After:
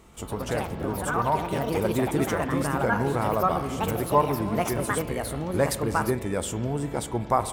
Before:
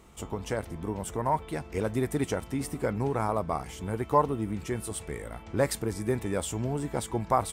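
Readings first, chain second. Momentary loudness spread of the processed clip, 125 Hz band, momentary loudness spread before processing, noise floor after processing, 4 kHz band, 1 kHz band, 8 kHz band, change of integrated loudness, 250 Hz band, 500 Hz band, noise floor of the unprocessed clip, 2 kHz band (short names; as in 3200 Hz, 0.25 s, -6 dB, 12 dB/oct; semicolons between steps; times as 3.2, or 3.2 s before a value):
6 LU, +3.5 dB, 8 LU, -38 dBFS, +5.0 dB, +4.5 dB, +3.5 dB, +4.5 dB, +4.5 dB, +4.0 dB, -46 dBFS, +8.5 dB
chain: spring tank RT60 3.1 s, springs 42 ms, chirp 25 ms, DRR 11 dB; echoes that change speed 0.142 s, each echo +4 st, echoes 2; gain +2 dB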